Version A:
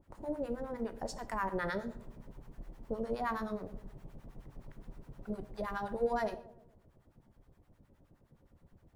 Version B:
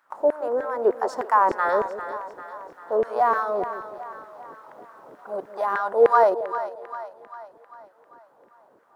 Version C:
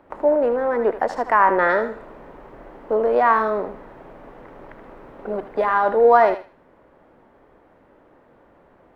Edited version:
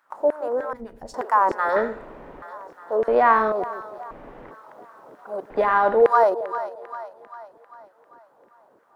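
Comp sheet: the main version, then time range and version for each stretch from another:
B
0:00.73–0:01.14: punch in from A
0:01.76–0:02.42: punch in from C
0:03.08–0:03.52: punch in from C
0:04.11–0:04.51: punch in from C
0:05.50–0:06.02: punch in from C

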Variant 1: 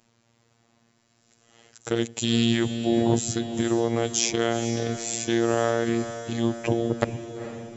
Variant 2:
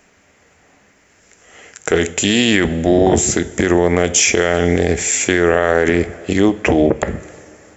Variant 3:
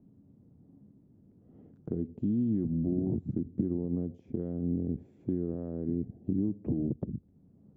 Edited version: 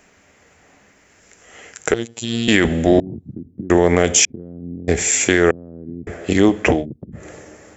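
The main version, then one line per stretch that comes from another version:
2
0:01.94–0:02.48: punch in from 1
0:03.00–0:03.70: punch in from 3
0:04.25–0:04.88: punch in from 3
0:05.51–0:06.07: punch in from 3
0:06.78–0:07.20: punch in from 3, crossfade 0.16 s

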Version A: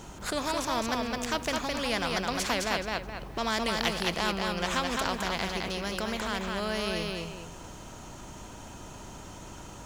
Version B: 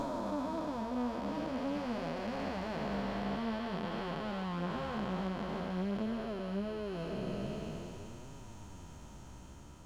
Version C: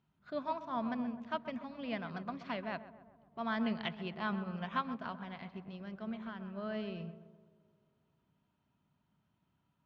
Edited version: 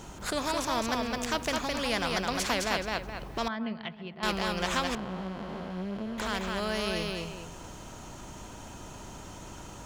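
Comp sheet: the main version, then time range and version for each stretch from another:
A
0:03.48–0:04.23: punch in from C
0:04.95–0:06.18: punch in from B

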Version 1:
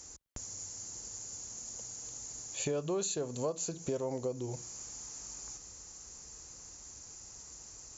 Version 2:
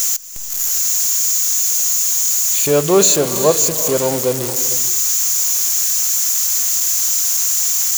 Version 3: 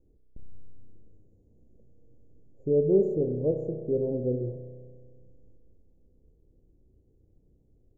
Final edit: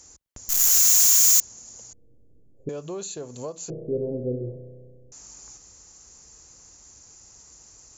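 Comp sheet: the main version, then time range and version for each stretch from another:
1
0:00.49–0:01.40: punch in from 2
0:01.93–0:02.69: punch in from 3
0:03.70–0:05.12: punch in from 3

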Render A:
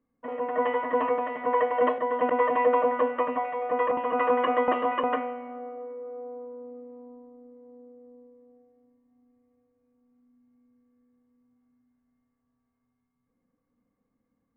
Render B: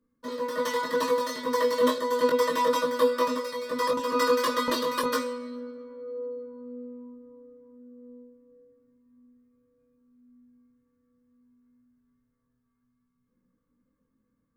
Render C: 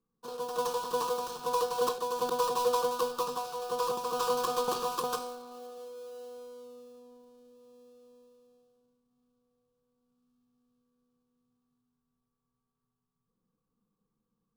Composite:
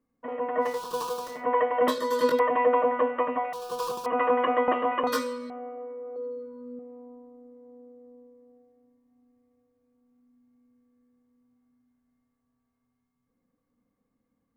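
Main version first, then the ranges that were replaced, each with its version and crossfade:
A
0:00.72–0:01.34: punch in from C, crossfade 0.24 s
0:01.88–0:02.39: punch in from B
0:03.53–0:04.06: punch in from C
0:05.07–0:05.50: punch in from B
0:06.16–0:06.79: punch in from B

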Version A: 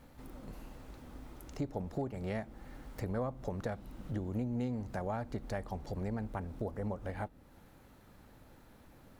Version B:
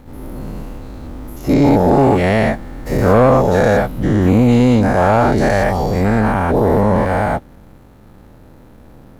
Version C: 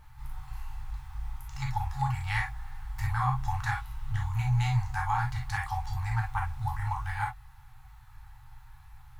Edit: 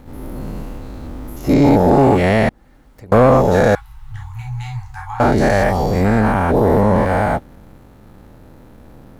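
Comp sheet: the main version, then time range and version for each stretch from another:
B
0:02.49–0:03.12: punch in from A
0:03.75–0:05.20: punch in from C

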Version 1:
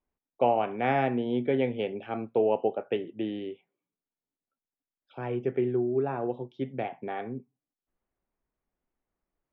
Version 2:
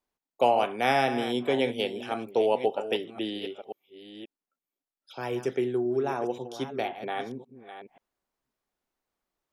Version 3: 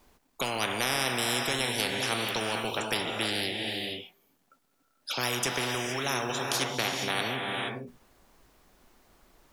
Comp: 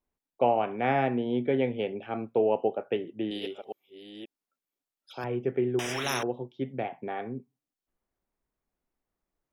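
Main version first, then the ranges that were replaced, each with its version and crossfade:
1
0:03.31–0:05.24: punch in from 2
0:05.79–0:06.23: punch in from 3

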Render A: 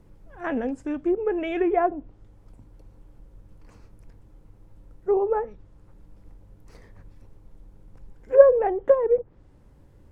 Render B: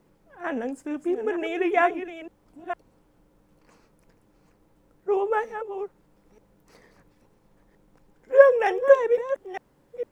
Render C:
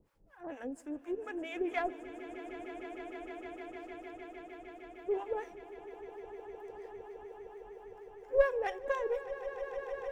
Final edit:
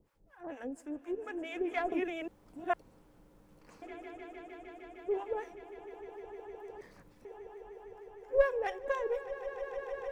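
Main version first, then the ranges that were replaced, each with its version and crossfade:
C
0:01.92–0:03.82: punch in from B
0:06.81–0:07.25: punch in from B
not used: A

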